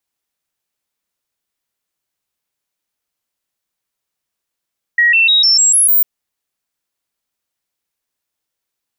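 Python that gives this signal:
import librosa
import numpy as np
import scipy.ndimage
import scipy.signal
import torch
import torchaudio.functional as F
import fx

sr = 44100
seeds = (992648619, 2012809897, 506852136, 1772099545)

y = fx.stepped_sweep(sr, from_hz=1900.0, direction='up', per_octave=2, tones=7, dwell_s=0.15, gap_s=0.0, level_db=-7.5)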